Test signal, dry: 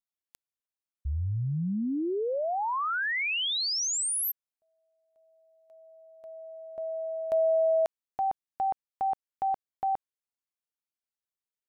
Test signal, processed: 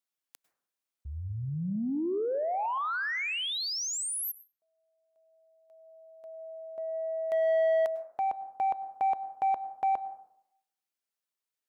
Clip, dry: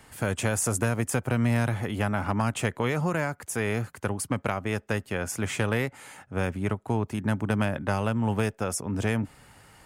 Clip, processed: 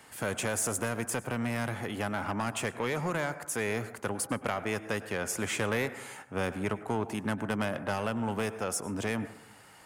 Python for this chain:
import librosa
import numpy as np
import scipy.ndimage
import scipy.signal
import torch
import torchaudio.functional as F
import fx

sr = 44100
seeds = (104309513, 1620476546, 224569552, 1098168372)

p1 = fx.highpass(x, sr, hz=100.0, slope=6)
p2 = fx.low_shelf(p1, sr, hz=160.0, db=-9.0)
p3 = np.clip(10.0 ** (26.5 / 20.0) * p2, -1.0, 1.0) / 10.0 ** (26.5 / 20.0)
p4 = p2 + (p3 * 10.0 ** (-11.0 / 20.0))
p5 = fx.rev_plate(p4, sr, seeds[0], rt60_s=0.73, hf_ratio=0.3, predelay_ms=90, drr_db=14.5)
p6 = 10.0 ** (-19.5 / 20.0) * np.tanh(p5 / 10.0 ** (-19.5 / 20.0))
p7 = fx.rider(p6, sr, range_db=4, speed_s=2.0)
y = p7 * 10.0 ** (-2.5 / 20.0)